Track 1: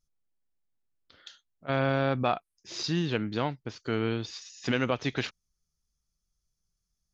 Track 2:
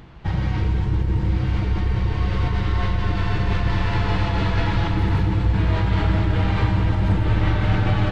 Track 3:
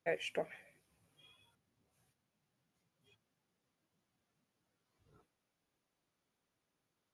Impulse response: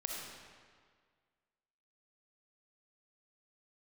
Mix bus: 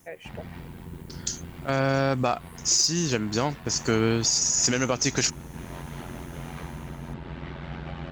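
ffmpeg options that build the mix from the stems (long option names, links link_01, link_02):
-filter_complex "[0:a]dynaudnorm=framelen=100:gausssize=11:maxgain=6.5dB,aexciter=amount=14.1:drive=8.2:freq=5600,volume=1dB[link_01];[1:a]highpass=frequency=110:width=0.5412,highpass=frequency=110:width=1.3066,acontrast=81,aeval=exprs='val(0)*sin(2*PI*43*n/s)':channel_layout=same,volume=-18dB[link_02];[2:a]volume=-3.5dB[link_03];[link_01][link_02][link_03]amix=inputs=3:normalize=0,alimiter=limit=-11dB:level=0:latency=1:release=453"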